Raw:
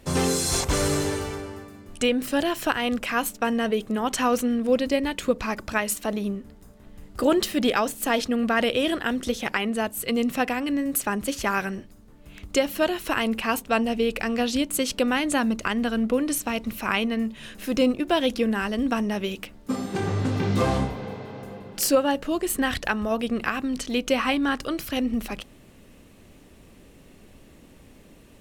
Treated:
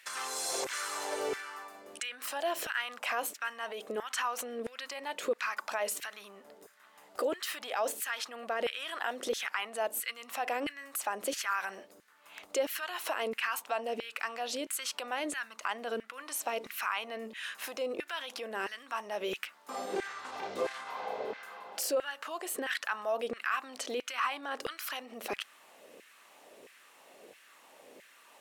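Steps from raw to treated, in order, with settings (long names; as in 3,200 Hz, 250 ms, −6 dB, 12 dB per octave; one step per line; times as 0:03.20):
brickwall limiter −21.5 dBFS, peak gain reduction 12 dB
downward compressor, threshold −29 dBFS, peak gain reduction 5 dB
auto-filter high-pass saw down 1.5 Hz 410–1,900 Hz
level −1.5 dB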